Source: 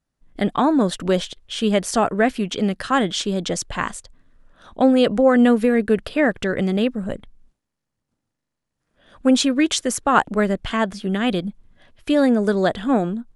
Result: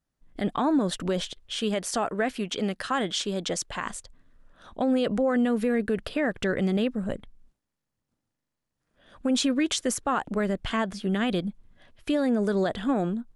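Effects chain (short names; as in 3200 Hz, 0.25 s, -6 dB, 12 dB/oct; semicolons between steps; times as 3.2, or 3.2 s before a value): 1.56–3.86 low shelf 260 Hz -7.5 dB; limiter -13 dBFS, peak gain reduction 11 dB; gain -3.5 dB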